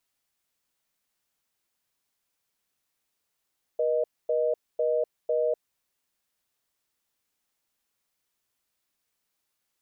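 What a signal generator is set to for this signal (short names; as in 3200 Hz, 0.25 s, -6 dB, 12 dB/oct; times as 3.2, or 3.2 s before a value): call progress tone reorder tone, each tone -25 dBFS 1.78 s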